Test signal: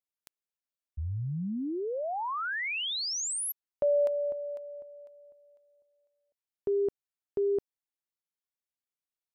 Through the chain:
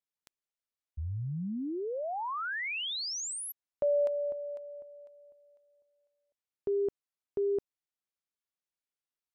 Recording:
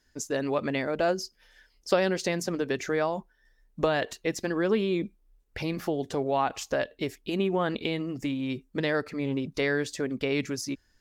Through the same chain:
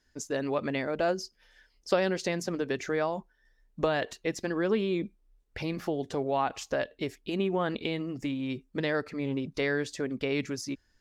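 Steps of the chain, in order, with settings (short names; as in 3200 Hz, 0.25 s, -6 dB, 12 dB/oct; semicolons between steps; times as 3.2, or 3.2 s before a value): high shelf 12000 Hz -10.5 dB; gain -2 dB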